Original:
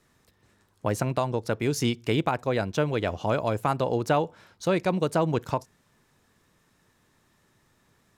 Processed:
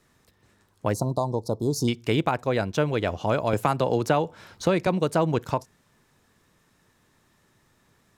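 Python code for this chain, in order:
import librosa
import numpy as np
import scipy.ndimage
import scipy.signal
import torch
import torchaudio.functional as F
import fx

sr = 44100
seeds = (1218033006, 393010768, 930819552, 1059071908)

y = fx.ellip_bandstop(x, sr, low_hz=1000.0, high_hz=4200.0, order=3, stop_db=60, at=(0.93, 1.88))
y = fx.band_squash(y, sr, depth_pct=70, at=(3.53, 4.87))
y = y * 10.0 ** (1.5 / 20.0)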